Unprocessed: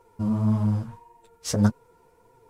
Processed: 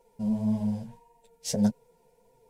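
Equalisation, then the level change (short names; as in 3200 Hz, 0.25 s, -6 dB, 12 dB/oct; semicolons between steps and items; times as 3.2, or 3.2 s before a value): fixed phaser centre 330 Hz, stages 6; -1.5 dB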